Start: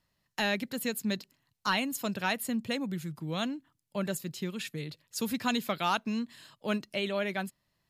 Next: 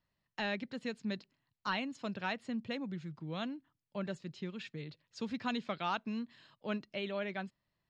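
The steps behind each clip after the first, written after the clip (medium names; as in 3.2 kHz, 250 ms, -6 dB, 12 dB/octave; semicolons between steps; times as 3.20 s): Bessel low-pass 3.8 kHz, order 6; trim -6 dB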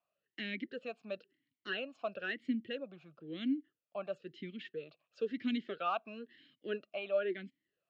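talking filter a-i 1 Hz; trim +11 dB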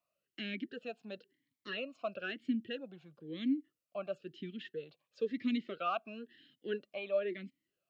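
Shepard-style phaser rising 0.54 Hz; trim +1.5 dB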